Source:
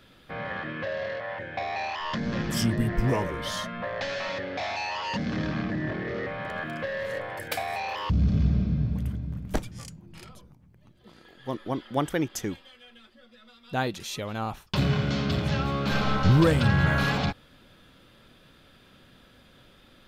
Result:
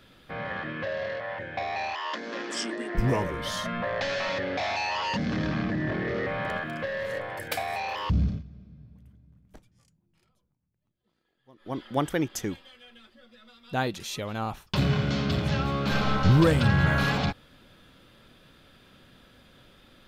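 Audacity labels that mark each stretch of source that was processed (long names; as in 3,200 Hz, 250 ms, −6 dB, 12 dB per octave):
1.950000	2.950000	elliptic band-pass filter 310–8,000 Hz
3.650000	6.580000	envelope flattener amount 50%
8.170000	11.820000	duck −23.5 dB, fades 0.26 s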